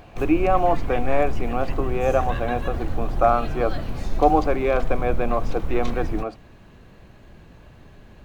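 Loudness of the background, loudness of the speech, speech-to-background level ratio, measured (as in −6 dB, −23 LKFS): −31.5 LKFS, −24.0 LKFS, 7.5 dB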